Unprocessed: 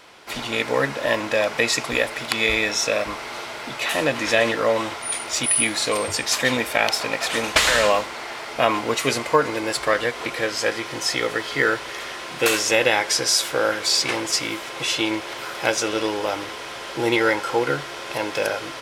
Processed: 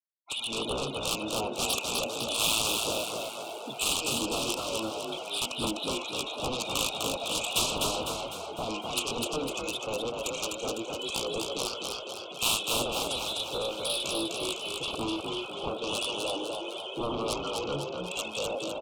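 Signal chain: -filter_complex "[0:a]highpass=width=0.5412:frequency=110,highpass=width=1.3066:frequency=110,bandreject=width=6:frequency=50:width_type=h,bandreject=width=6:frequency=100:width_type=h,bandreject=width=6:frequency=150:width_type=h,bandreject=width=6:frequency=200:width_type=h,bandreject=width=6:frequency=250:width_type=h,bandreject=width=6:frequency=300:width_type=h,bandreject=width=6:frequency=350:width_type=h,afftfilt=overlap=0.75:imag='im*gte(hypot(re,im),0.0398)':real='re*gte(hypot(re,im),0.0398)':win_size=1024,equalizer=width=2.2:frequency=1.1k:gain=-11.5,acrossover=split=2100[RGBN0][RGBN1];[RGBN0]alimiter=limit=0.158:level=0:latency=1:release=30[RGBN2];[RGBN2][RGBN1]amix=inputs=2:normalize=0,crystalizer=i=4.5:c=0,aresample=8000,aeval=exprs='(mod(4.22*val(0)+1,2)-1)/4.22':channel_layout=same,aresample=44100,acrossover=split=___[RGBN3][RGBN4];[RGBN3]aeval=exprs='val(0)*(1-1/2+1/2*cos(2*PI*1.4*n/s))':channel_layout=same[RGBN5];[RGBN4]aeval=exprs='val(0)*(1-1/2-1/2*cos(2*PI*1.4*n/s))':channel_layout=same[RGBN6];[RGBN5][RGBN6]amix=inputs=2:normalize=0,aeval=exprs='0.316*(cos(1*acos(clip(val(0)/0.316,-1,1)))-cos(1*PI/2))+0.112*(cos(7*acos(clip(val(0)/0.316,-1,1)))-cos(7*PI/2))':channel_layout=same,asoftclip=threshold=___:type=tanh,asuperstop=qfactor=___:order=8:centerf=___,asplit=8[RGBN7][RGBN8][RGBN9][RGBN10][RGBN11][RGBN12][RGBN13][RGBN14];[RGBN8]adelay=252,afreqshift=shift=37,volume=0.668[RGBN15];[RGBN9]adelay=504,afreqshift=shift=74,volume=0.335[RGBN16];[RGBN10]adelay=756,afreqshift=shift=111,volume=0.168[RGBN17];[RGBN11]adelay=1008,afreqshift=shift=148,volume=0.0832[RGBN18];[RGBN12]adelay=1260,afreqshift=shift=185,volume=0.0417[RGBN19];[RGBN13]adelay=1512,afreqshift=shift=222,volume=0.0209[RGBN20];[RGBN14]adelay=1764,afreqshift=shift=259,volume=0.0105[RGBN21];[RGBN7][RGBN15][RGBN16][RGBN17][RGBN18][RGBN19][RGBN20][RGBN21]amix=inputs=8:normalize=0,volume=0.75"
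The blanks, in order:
1000, 0.251, 1.4, 1800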